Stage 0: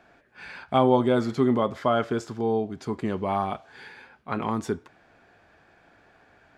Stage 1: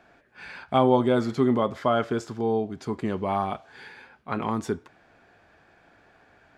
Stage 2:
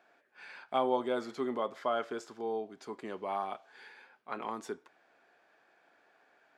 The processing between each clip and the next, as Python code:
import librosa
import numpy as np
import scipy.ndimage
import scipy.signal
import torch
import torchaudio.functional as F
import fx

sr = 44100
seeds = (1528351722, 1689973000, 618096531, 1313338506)

y1 = x
y2 = scipy.signal.sosfilt(scipy.signal.butter(2, 370.0, 'highpass', fs=sr, output='sos'), y1)
y2 = y2 * librosa.db_to_amplitude(-8.0)